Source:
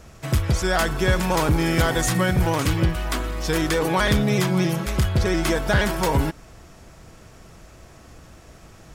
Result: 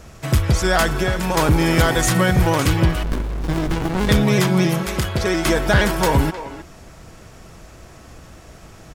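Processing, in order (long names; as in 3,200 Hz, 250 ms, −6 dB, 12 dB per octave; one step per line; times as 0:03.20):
0:00.96–0:01.37: downward compressor, threshold −21 dBFS, peak gain reduction 7 dB
0:04.83–0:05.46: low-shelf EQ 160 Hz −9.5 dB
far-end echo of a speakerphone 310 ms, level −11 dB
0:03.03–0:04.09: windowed peak hold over 65 samples
level +4 dB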